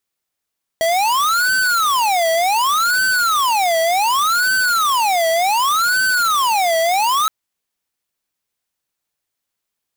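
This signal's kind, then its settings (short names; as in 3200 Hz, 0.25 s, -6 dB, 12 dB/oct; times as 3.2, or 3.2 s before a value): siren wail 653–1530 Hz 0.67/s square -16 dBFS 6.47 s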